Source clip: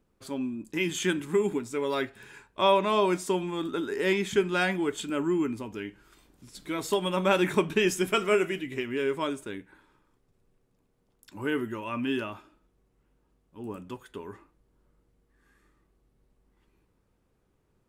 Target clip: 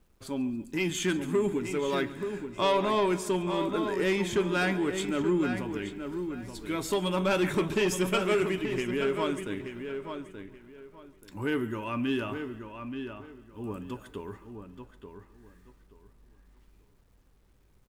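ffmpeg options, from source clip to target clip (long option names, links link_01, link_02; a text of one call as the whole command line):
ffmpeg -i in.wav -filter_complex "[0:a]acrusher=bits=11:mix=0:aa=0.000001,lowshelf=frequency=88:gain=12,asplit=2[link_01][link_02];[link_02]aecho=0:1:141|282|423|564|705:0.1|0.059|0.0348|0.0205|0.0121[link_03];[link_01][link_03]amix=inputs=2:normalize=0,asoftclip=type=tanh:threshold=-19.5dB,asplit=2[link_04][link_05];[link_05]adelay=879,lowpass=frequency=3100:poles=1,volume=-7.5dB,asplit=2[link_06][link_07];[link_07]adelay=879,lowpass=frequency=3100:poles=1,volume=0.24,asplit=2[link_08][link_09];[link_09]adelay=879,lowpass=frequency=3100:poles=1,volume=0.24[link_10];[link_06][link_08][link_10]amix=inputs=3:normalize=0[link_11];[link_04][link_11]amix=inputs=2:normalize=0" out.wav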